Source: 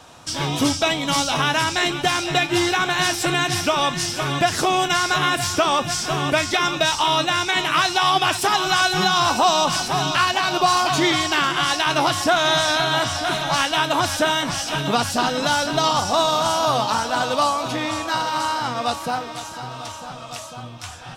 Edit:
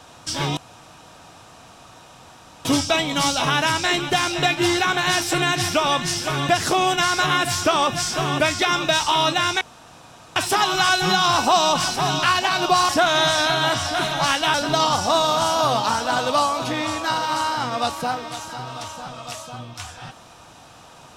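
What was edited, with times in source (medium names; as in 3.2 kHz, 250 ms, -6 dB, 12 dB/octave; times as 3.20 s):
0.57 s: insert room tone 2.08 s
7.53–8.28 s: room tone
10.81–12.19 s: delete
13.84–15.58 s: delete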